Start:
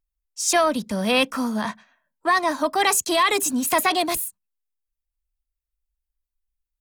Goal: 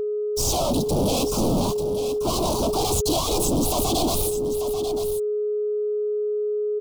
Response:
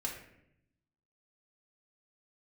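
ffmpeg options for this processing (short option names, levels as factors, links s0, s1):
-filter_complex "[0:a]aeval=exprs='if(lt(val(0),0),0.251*val(0),val(0))':c=same,acrossover=split=4300[s0][s1];[s1]acompressor=threshold=0.0158:ratio=4:attack=1:release=60[s2];[s0][s2]amix=inputs=2:normalize=0,acrusher=bits=7:mix=0:aa=0.000001,afftfilt=real='hypot(re,im)*cos(2*PI*random(0))':imag='hypot(re,im)*sin(2*PI*random(1))':win_size=512:overlap=0.75,aeval=exprs='val(0)+0.00562*sin(2*PI*420*n/s)':c=same,apsyclip=17.8,asoftclip=type=tanh:threshold=0.133,asuperstop=centerf=1800:order=4:qfactor=0.61,asplit=2[s3][s4];[s4]aecho=0:1:890:0.335[s5];[s3][s5]amix=inputs=2:normalize=0,volume=0.841"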